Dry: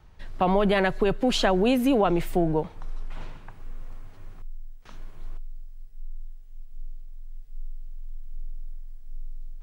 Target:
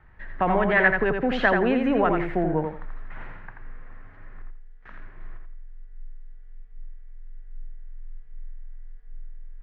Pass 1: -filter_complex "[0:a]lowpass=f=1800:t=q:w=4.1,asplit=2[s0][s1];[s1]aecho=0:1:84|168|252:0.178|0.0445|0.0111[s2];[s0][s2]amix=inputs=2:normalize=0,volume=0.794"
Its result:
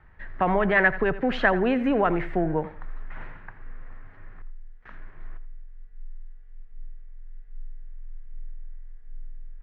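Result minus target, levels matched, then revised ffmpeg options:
echo-to-direct -10 dB
-filter_complex "[0:a]lowpass=f=1800:t=q:w=4.1,asplit=2[s0][s1];[s1]aecho=0:1:84|168|252:0.562|0.141|0.0351[s2];[s0][s2]amix=inputs=2:normalize=0,volume=0.794"

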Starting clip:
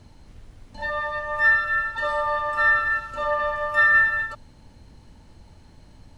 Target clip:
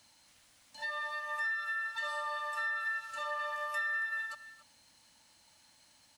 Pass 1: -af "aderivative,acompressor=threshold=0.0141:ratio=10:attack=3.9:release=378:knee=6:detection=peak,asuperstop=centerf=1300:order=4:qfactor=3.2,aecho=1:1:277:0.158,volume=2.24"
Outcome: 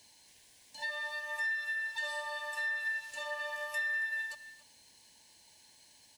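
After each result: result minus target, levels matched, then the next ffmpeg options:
1 kHz band -6.5 dB; 8 kHz band +4.0 dB
-af "aderivative,acompressor=threshold=0.0141:ratio=10:attack=3.9:release=378:knee=6:detection=peak,asuperstop=centerf=410:order=4:qfactor=3.2,aecho=1:1:277:0.158,volume=2.24"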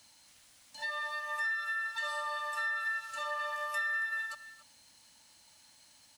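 8 kHz band +3.5 dB
-af "aderivative,acompressor=threshold=0.0141:ratio=10:attack=3.9:release=378:knee=6:detection=peak,asuperstop=centerf=410:order=4:qfactor=3.2,highshelf=f=3600:g=-5,aecho=1:1:277:0.158,volume=2.24"

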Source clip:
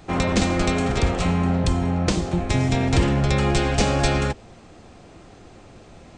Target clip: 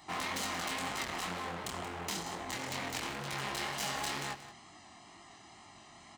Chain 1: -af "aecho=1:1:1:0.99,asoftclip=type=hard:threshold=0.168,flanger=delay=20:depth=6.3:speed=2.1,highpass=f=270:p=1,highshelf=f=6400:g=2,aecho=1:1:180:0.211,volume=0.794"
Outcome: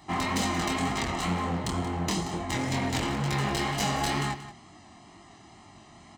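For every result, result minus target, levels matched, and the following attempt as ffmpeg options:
250 Hz band +6.5 dB; hard clipper: distortion -5 dB
-af "aecho=1:1:1:0.99,asoftclip=type=hard:threshold=0.168,flanger=delay=20:depth=6.3:speed=2.1,highpass=f=860:p=1,highshelf=f=6400:g=2,aecho=1:1:180:0.211,volume=0.794"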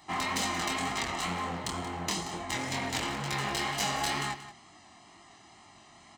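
hard clipper: distortion -5 dB
-af "aecho=1:1:1:0.99,asoftclip=type=hard:threshold=0.0596,flanger=delay=20:depth=6.3:speed=2.1,highpass=f=860:p=1,highshelf=f=6400:g=2,aecho=1:1:180:0.211,volume=0.794"

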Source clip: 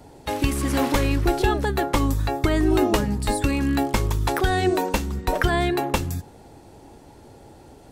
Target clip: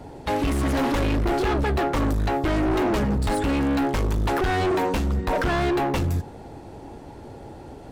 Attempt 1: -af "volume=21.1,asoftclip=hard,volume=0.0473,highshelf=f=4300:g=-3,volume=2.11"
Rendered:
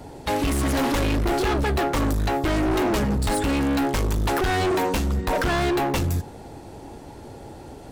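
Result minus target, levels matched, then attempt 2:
8 kHz band +6.0 dB
-af "volume=21.1,asoftclip=hard,volume=0.0473,highshelf=f=4300:g=-11.5,volume=2.11"

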